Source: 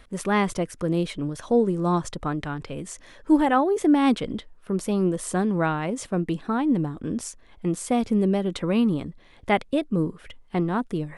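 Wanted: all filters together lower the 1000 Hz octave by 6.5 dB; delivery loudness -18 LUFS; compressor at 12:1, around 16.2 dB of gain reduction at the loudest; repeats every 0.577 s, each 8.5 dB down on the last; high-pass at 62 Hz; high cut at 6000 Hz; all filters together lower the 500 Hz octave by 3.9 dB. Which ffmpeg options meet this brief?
-af "highpass=62,lowpass=6k,equalizer=f=500:t=o:g=-3.5,equalizer=f=1k:t=o:g=-7.5,acompressor=threshold=-32dB:ratio=12,aecho=1:1:577|1154|1731|2308:0.376|0.143|0.0543|0.0206,volume=19dB"

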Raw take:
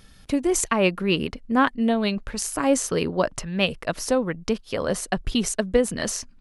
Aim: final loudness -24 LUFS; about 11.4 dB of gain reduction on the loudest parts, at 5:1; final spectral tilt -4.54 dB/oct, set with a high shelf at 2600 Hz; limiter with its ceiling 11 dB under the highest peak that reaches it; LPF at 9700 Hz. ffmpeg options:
-af "lowpass=9.7k,highshelf=f=2.6k:g=-5.5,acompressor=threshold=-27dB:ratio=5,volume=11.5dB,alimiter=limit=-13.5dB:level=0:latency=1"

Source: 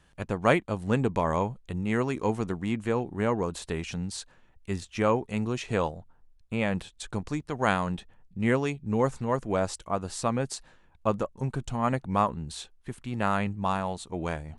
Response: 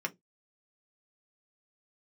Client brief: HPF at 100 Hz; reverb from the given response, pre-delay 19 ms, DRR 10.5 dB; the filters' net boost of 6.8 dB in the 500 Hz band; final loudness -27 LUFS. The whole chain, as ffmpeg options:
-filter_complex "[0:a]highpass=100,equalizer=f=500:t=o:g=8,asplit=2[a][b];[1:a]atrim=start_sample=2205,adelay=19[c];[b][c]afir=irnorm=-1:irlink=0,volume=-14.5dB[d];[a][d]amix=inputs=2:normalize=0,volume=-1.5dB"

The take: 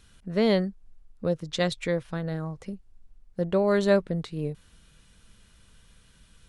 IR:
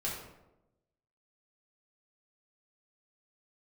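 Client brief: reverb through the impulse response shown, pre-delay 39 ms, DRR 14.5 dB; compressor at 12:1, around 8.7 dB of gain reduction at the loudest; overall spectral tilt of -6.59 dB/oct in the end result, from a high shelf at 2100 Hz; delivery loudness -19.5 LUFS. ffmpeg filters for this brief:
-filter_complex "[0:a]highshelf=f=2.1k:g=-6,acompressor=threshold=-24dB:ratio=12,asplit=2[a][b];[1:a]atrim=start_sample=2205,adelay=39[c];[b][c]afir=irnorm=-1:irlink=0,volume=-18dB[d];[a][d]amix=inputs=2:normalize=0,volume=13dB"

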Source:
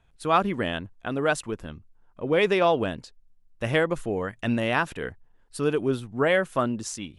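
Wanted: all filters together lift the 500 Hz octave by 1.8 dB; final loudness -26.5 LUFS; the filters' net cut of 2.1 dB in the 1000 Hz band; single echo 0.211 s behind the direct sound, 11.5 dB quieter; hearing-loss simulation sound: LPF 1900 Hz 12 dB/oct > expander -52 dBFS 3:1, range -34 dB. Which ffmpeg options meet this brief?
-af "lowpass=1.9k,equalizer=f=500:t=o:g=3,equalizer=f=1k:t=o:g=-3.5,aecho=1:1:211:0.266,agate=range=-34dB:threshold=-52dB:ratio=3,volume=-1dB"

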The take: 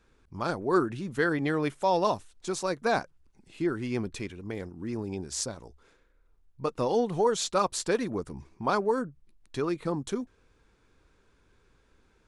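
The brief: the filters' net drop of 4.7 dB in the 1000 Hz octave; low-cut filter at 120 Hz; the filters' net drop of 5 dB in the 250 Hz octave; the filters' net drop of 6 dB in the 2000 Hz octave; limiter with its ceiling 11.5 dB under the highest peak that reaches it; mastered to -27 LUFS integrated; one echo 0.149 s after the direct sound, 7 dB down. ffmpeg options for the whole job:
-af "highpass=120,equalizer=f=250:t=o:g=-6.5,equalizer=f=1k:t=o:g=-4,equalizer=f=2k:t=o:g=-6.5,alimiter=level_in=1.5dB:limit=-24dB:level=0:latency=1,volume=-1.5dB,aecho=1:1:149:0.447,volume=9.5dB"

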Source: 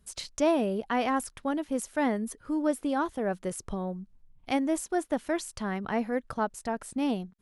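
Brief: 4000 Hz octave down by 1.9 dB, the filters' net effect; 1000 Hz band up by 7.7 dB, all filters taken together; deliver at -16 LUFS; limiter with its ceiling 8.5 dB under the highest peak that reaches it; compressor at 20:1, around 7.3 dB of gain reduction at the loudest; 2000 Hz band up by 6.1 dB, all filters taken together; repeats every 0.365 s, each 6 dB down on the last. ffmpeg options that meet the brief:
-af "equalizer=f=1k:t=o:g=9,equalizer=f=2k:t=o:g=5.5,equalizer=f=4k:t=o:g=-5.5,acompressor=threshold=-24dB:ratio=20,alimiter=limit=-22.5dB:level=0:latency=1,aecho=1:1:365|730|1095|1460|1825|2190:0.501|0.251|0.125|0.0626|0.0313|0.0157,volume=16dB"

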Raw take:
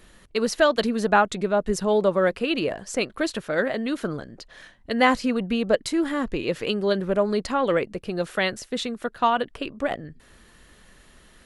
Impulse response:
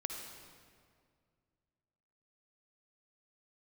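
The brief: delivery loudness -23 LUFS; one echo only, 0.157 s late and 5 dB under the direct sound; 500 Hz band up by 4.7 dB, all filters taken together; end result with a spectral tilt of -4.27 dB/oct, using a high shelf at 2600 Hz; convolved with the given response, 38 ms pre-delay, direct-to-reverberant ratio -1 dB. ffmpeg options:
-filter_complex "[0:a]equalizer=f=500:t=o:g=6,highshelf=f=2.6k:g=-6,aecho=1:1:157:0.562,asplit=2[a][b];[1:a]atrim=start_sample=2205,adelay=38[c];[b][c]afir=irnorm=-1:irlink=0,volume=0.5dB[d];[a][d]amix=inputs=2:normalize=0,volume=-6.5dB"

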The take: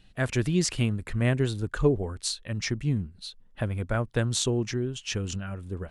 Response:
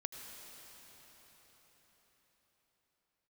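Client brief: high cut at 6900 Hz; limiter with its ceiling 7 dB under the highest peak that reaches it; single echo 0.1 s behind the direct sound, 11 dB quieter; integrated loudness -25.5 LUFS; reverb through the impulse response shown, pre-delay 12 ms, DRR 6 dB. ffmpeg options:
-filter_complex "[0:a]lowpass=6.9k,alimiter=limit=-18dB:level=0:latency=1,aecho=1:1:100:0.282,asplit=2[a][b];[1:a]atrim=start_sample=2205,adelay=12[c];[b][c]afir=irnorm=-1:irlink=0,volume=-4.5dB[d];[a][d]amix=inputs=2:normalize=0,volume=4dB"

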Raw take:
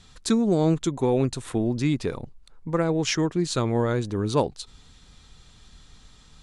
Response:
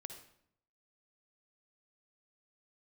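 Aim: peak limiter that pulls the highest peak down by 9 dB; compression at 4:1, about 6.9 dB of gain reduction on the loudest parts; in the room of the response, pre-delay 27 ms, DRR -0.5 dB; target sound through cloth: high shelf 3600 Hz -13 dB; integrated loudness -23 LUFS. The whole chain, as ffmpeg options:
-filter_complex "[0:a]acompressor=threshold=-25dB:ratio=4,alimiter=limit=-24dB:level=0:latency=1,asplit=2[a][b];[1:a]atrim=start_sample=2205,adelay=27[c];[b][c]afir=irnorm=-1:irlink=0,volume=5dB[d];[a][d]amix=inputs=2:normalize=0,highshelf=f=3.6k:g=-13,volume=8dB"

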